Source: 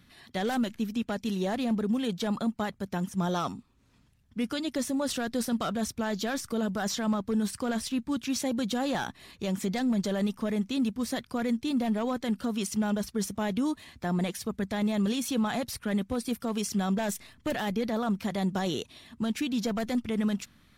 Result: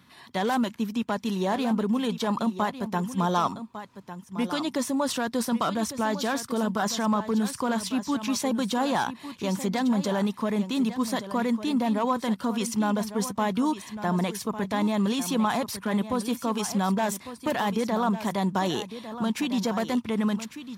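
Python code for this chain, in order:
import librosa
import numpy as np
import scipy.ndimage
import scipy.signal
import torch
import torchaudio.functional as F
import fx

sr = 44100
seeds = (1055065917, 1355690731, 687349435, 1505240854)

y = scipy.signal.sosfilt(scipy.signal.butter(2, 110.0, 'highpass', fs=sr, output='sos'), x)
y = fx.peak_eq(y, sr, hz=990.0, db=11.5, octaves=0.41)
y = y + 10.0 ** (-12.0 / 20.0) * np.pad(y, (int(1152 * sr / 1000.0), 0))[:len(y)]
y = y * 10.0 ** (2.5 / 20.0)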